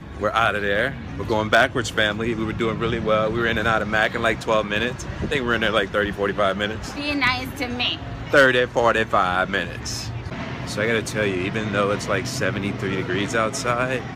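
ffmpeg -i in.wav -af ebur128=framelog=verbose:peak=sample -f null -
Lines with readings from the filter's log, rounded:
Integrated loudness:
  I:         -21.7 LUFS
  Threshold: -31.7 LUFS
Loudness range:
  LRA:         3.4 LU
  Threshold: -41.6 LUFS
  LRA low:   -23.6 LUFS
  LRA high:  -20.2 LUFS
Sample peak:
  Peak:       -5.6 dBFS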